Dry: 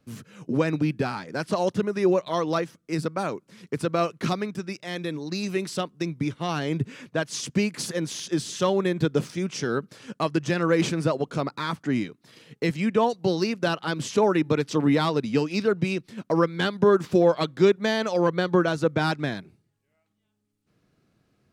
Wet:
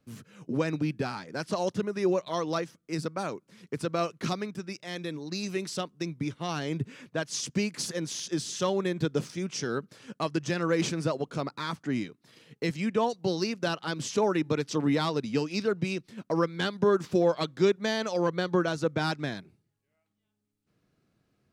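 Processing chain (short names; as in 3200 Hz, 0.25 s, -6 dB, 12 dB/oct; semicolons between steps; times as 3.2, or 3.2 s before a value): dynamic EQ 5800 Hz, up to +5 dB, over -47 dBFS, Q 1.2; gain -5 dB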